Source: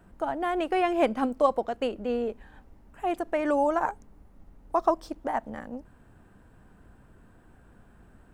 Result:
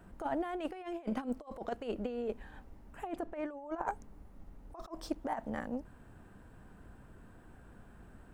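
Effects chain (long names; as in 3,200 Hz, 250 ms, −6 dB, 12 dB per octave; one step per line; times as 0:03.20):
0:03.07–0:03.88: high-shelf EQ 3,300 Hz −11 dB
compressor whose output falls as the input rises −31 dBFS, ratio −0.5
level −5.5 dB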